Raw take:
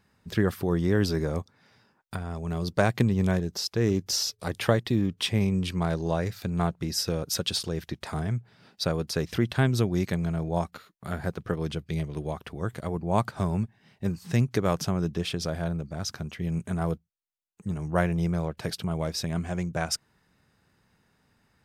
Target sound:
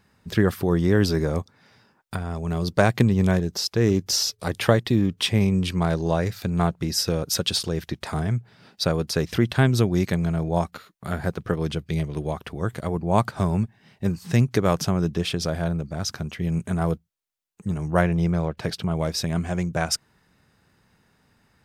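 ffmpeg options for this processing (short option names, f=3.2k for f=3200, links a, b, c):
-filter_complex "[0:a]asettb=1/sr,asplit=3[a][b][c];[a]atrim=end=18.014[d];[b]atrim=start=18.01:end=18.97,asetpts=PTS-STARTPTS,afade=t=in:d=0.004:c=qsin,afade=t=out:st=0.956:d=0.004:c=qsin,equalizer=f=12k:t=o:w=1.3:g=-8[e];[c]atrim=start=18.966[f];[d][e]acrossfade=d=0.004:c1=hsin:c2=qsin[g];[g][f]acrossfade=d=0.004:c1=qsin:c2=hsin,volume=4.5dB"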